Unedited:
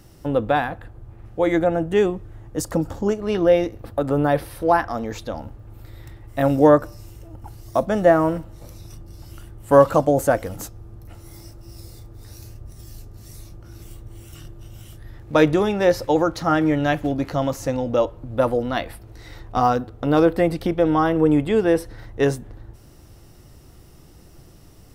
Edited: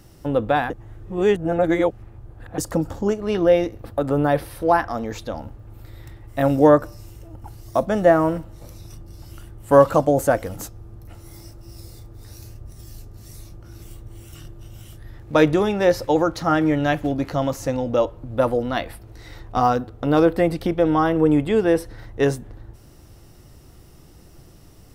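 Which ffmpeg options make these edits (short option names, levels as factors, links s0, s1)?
-filter_complex "[0:a]asplit=3[s0][s1][s2];[s0]atrim=end=0.702[s3];[s1]atrim=start=0.698:end=2.582,asetpts=PTS-STARTPTS,areverse[s4];[s2]atrim=start=2.578[s5];[s3][s4]acrossfade=d=0.004:c1=hsin:c2=hsin[s6];[s6][s5]acrossfade=d=0.004:c1=hsin:c2=hsin"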